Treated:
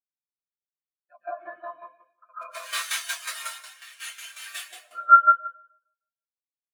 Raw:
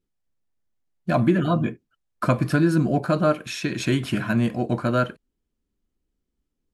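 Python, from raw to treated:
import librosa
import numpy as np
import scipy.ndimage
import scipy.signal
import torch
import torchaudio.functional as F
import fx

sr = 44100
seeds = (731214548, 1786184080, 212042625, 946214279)

y = fx.spec_flatten(x, sr, power=0.13, at=(2.4, 4.55), fade=0.02)
y = scipy.signal.sosfilt(scipy.signal.butter(2, 1000.0, 'highpass', fs=sr, output='sos'), y)
y = fx.echo_feedback(y, sr, ms=155, feedback_pct=54, wet_db=-4)
y = fx.rev_plate(y, sr, seeds[0], rt60_s=1.1, hf_ratio=0.8, predelay_ms=105, drr_db=-8.5)
y = fx.tremolo_shape(y, sr, shape='saw_down', hz=5.5, depth_pct=60)
y = fx.spectral_expand(y, sr, expansion=2.5)
y = F.gain(torch.from_numpy(y), -5.5).numpy()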